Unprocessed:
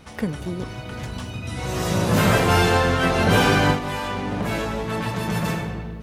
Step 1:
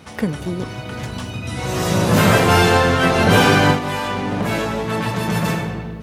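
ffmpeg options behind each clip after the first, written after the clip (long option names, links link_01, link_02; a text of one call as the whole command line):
ffmpeg -i in.wav -af "highpass=77,volume=4.5dB" out.wav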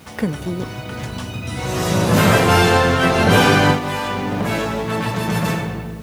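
ffmpeg -i in.wav -af "acrusher=bits=7:mix=0:aa=0.000001" out.wav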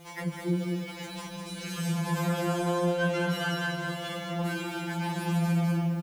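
ffmpeg -i in.wav -af "aecho=1:1:202:0.562,acompressor=threshold=-20dB:ratio=6,afftfilt=real='re*2.83*eq(mod(b,8),0)':imag='im*2.83*eq(mod(b,8),0)':win_size=2048:overlap=0.75,volume=-5dB" out.wav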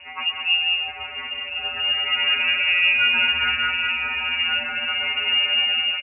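ffmpeg -i in.wav -filter_complex "[0:a]asplit=2[link_01][link_02];[link_02]aecho=0:1:128:0.282[link_03];[link_01][link_03]amix=inputs=2:normalize=0,lowpass=frequency=2600:width_type=q:width=0.5098,lowpass=frequency=2600:width_type=q:width=0.6013,lowpass=frequency=2600:width_type=q:width=0.9,lowpass=frequency=2600:width_type=q:width=2.563,afreqshift=-3000,asplit=2[link_04][link_05];[link_05]aecho=0:1:1045:0.299[link_06];[link_04][link_06]amix=inputs=2:normalize=0,volume=7.5dB" out.wav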